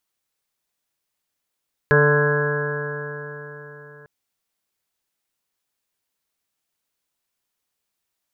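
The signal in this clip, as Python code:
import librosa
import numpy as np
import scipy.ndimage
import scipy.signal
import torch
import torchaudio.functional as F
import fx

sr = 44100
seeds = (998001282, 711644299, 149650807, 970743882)

y = fx.additive_stiff(sr, length_s=2.15, hz=146.0, level_db=-17.0, upper_db=(-13.0, 2.0, -6, -19.0, -16, -7, -19, -10.0, -7.5, 0.0), decay_s=4.07, stiffness=0.00057)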